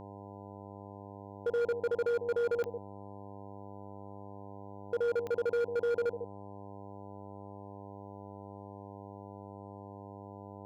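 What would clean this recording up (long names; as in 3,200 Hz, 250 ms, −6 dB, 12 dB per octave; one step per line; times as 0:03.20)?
clipped peaks rebuilt −27.5 dBFS
click removal
hum removal 100.1 Hz, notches 10
echo removal 150 ms −10.5 dB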